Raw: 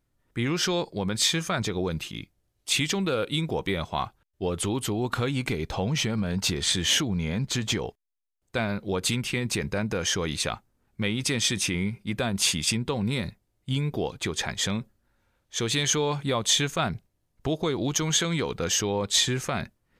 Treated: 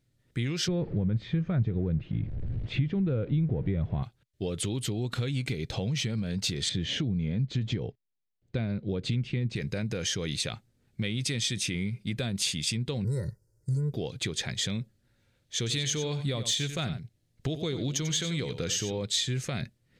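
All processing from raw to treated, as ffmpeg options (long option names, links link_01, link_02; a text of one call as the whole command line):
ffmpeg -i in.wav -filter_complex "[0:a]asettb=1/sr,asplit=3[link_01][link_02][link_03];[link_01]atrim=end=0.684[link_04];[link_02]atrim=start=0.68:end=4.03,asetpts=PTS-STARTPTS,afade=type=in:duration=0.004:curve=qsin,afade=type=out:start_time=3.346:duration=0.004:curve=qsin,aeval=exprs='val(0)+0.5*0.0158*sgn(val(0))':channel_layout=same,lowpass=1800,aemphasis=mode=reproduction:type=riaa[link_05];[link_03]atrim=start=4.026[link_06];[link_04][link_05]acrossfade=duration=0.004:curve1=hsin:curve2=qsin[link_07];[link_07][link_06]acrossfade=duration=0.004:curve1=qsin:curve2=hsin,asettb=1/sr,asplit=3[link_08][link_09][link_10];[link_08]atrim=end=6.694[link_11];[link_09]atrim=start=6.69:end=9.56,asetpts=PTS-STARTPTS,afade=type=in:duration=0.004:curve=qsin,afade=type=out:start_time=2.866:duration=0.004:curve=qsin,lowpass=3900,tiltshelf=frequency=650:gain=5[link_12];[link_10]atrim=start=9.556[link_13];[link_11][link_12]acrossfade=duration=0.004:curve1=hsin:curve2=qsin[link_14];[link_14][link_13]acrossfade=duration=0.004:curve1=qsin:curve2=hsin,asettb=1/sr,asplit=3[link_15][link_16][link_17];[link_15]atrim=end=13.044[link_18];[link_16]atrim=start=13.04:end=13.93,asetpts=PTS-STARTPTS,afade=type=in:duration=0.004:curve=qsin,afade=type=out:start_time=0.886:duration=0.004:curve=qsin,asuperstop=centerf=2900:order=8:qfactor=0.87,aecho=1:1:2.1:0.98,atrim=end_sample=39249[link_19];[link_17]atrim=start=13.926[link_20];[link_18][link_19]acrossfade=duration=0.004:curve1=hsin:curve2=qsin[link_21];[link_21][link_20]acrossfade=duration=0.004:curve1=qsin:curve2=hsin,asettb=1/sr,asplit=3[link_22][link_23][link_24];[link_22]atrim=end=15.574[link_25];[link_23]atrim=start=15.57:end=18.98,asetpts=PTS-STARTPTS,afade=type=in:duration=0.004:curve=qsin,afade=type=out:start_time=3.406:duration=0.004:curve=qsin,aeval=exprs='0.224*(abs(mod(val(0)/0.224+3,4)-2)-1)':channel_layout=same,aecho=1:1:92:0.266,atrim=end_sample=150381[link_26];[link_24]atrim=start=18.976[link_27];[link_25][link_26]acrossfade=duration=0.004:curve1=hsin:curve2=qsin[link_28];[link_28][link_27]acrossfade=duration=0.004:curve1=qsin:curve2=hsin,equalizer=frequency=125:width_type=o:width=1:gain=12,equalizer=frequency=250:width_type=o:width=1:gain=3,equalizer=frequency=500:width_type=o:width=1:gain=5,equalizer=frequency=1000:width_type=o:width=1:gain=-7,equalizer=frequency=2000:width_type=o:width=1:gain=5,equalizer=frequency=4000:width_type=o:width=1:gain=8,equalizer=frequency=8000:width_type=o:width=1:gain=5,acompressor=threshold=-27dB:ratio=2.5,volume=-4dB" out.wav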